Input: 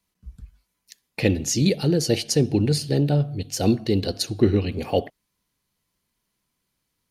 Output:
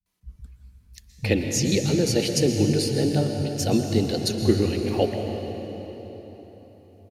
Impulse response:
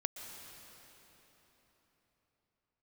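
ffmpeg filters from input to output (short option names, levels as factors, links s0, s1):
-filter_complex "[0:a]acrossover=split=160[s0][s1];[s1]adelay=60[s2];[s0][s2]amix=inputs=2:normalize=0[s3];[1:a]atrim=start_sample=2205[s4];[s3][s4]afir=irnorm=-1:irlink=0"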